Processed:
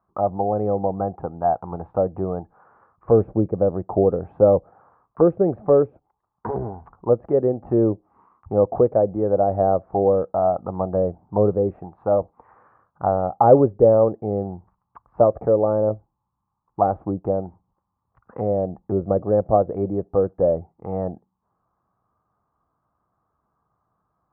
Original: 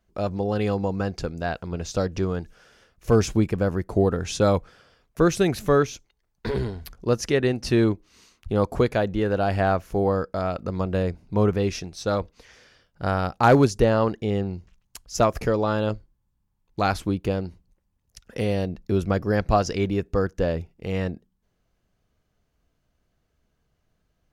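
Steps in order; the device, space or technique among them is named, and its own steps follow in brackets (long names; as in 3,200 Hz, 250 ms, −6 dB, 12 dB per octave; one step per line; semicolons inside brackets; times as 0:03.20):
envelope filter bass rig (envelope-controlled low-pass 550–1,100 Hz down, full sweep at −18 dBFS; loudspeaker in its box 71–2,000 Hz, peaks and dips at 110 Hz +4 dB, 180 Hz +3 dB, 320 Hz +3 dB, 810 Hz +8 dB, 1,200 Hz +9 dB)
level −4.5 dB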